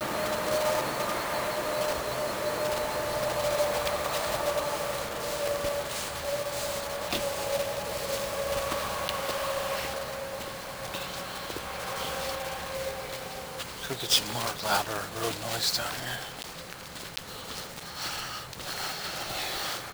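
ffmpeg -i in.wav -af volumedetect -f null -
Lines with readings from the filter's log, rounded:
mean_volume: -31.8 dB
max_volume: -9.0 dB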